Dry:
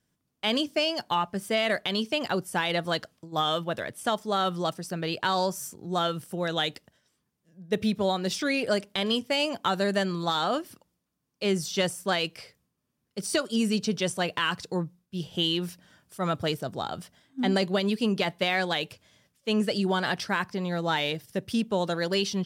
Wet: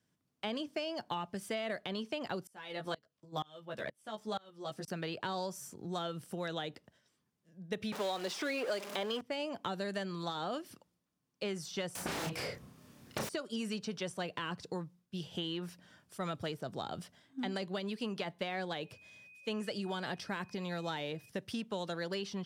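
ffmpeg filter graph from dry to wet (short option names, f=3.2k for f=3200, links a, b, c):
-filter_complex "[0:a]asettb=1/sr,asplit=3[a][b][c];[a]atrim=end=2.474[d];[b]atrim=start=2.47:end=4.88,asetpts=PTS-STARTPTS,afade=t=in:d=0.004:c=qsin,afade=t=out:st=2.406:d=0.004:c=qsin,asplit=2[e][f];[f]adelay=14,volume=-3dB[g];[e][g]amix=inputs=2:normalize=0,atrim=end_sample=106281,aeval=exprs='val(0)*pow(10,-29*if(lt(mod(-2.1*n/s,1),2*abs(-2.1)/1000),1-mod(-2.1*n/s,1)/(2*abs(-2.1)/1000),(mod(-2.1*n/s,1)-2*abs(-2.1)/1000)/(1-2*abs(-2.1)/1000))/20)':c=same[h];[c]atrim=start=4.876[i];[d][h]acrossfade=d=0.004:c1=hsin:c2=qsin[j];[j][i]acrossfade=d=0.004:c1=qsin:c2=hsin,asettb=1/sr,asplit=3[k][l][m];[k]atrim=end=7.924[n];[l]atrim=start=7.92:end=9.21,asetpts=PTS-STARTPTS,afade=t=in:d=0.004:c=qsin,afade=t=out:st=1.286:d=0.004:c=qsin,aeval=exprs='val(0)+0.5*0.0316*sgn(val(0))':c=same,highpass=400,acontrast=75[o];[m]atrim=start=9.206[p];[n][o]acrossfade=d=0.004:c1=hsin:c2=qsin[q];[q][p]acrossfade=d=0.004:c1=qsin:c2=hsin,asettb=1/sr,asplit=3[r][s][t];[r]atrim=end=11.954[u];[s]atrim=start=11.95:end=13.29,asetpts=PTS-STARTPTS,afade=t=in:d=0.004:c=qsin,afade=t=out:st=1.336:d=0.004:c=qsin,acompressor=threshold=-28dB:ratio=10:attack=3.2:release=140:knee=1:detection=peak,aeval=exprs='0.0794*sin(PI/2*8.91*val(0)/0.0794)':c=same,asplit=2[v][w];[w]adelay=31,volume=-2dB[x];[v][x]amix=inputs=2:normalize=0,atrim=end_sample=59094[y];[t]atrim=start=13.286[z];[u][y]acrossfade=d=0.004:c1=hsin:c2=qsin[aa];[aa][z]acrossfade=d=0.004:c1=qsin:c2=hsin,asettb=1/sr,asplit=3[ab][ac][ad];[ab]atrim=end=18.844[ae];[ac]atrim=start=18.84:end=21.29,asetpts=PTS-STARTPTS,afade=t=in:d=0.004:c=qsin,afade=t=out:st=2.446:d=0.004:c=qsin,highshelf=f=5.2k:g=4,aeval=exprs='val(0)+0.00251*sin(2*PI*2500*n/s)':c=same[af];[ad]atrim=start=21.286[ag];[ae][af]acrossfade=d=0.004:c1=hsin:c2=qsin[ah];[ah][ag]acrossfade=d=0.004:c1=qsin:c2=hsin,highpass=78,highshelf=f=10k:g=-7.5,acrossover=split=750|1800[ai][aj][ak];[ai]acompressor=threshold=-36dB:ratio=4[al];[aj]acompressor=threshold=-44dB:ratio=4[am];[ak]acompressor=threshold=-43dB:ratio=4[an];[al][am][an]amix=inputs=3:normalize=0,volume=-2.5dB"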